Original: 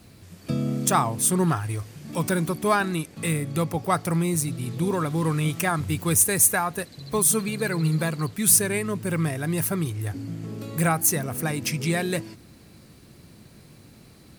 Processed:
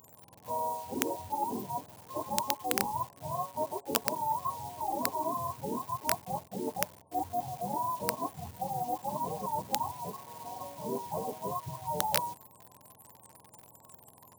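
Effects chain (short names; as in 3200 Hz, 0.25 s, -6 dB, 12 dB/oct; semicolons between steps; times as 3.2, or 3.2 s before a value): spectrum mirrored in octaves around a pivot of 560 Hz; FFT band-reject 1100–7100 Hz; dynamic EQ 1100 Hz, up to +4 dB, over -41 dBFS, Q 0.79; reverse; compressor 8:1, threshold -32 dBFS, peak gain reduction 17 dB; reverse; wrapped overs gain 24 dB; in parallel at -11 dB: requantised 8-bit, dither none; on the sum: RIAA curve recording; gain +2 dB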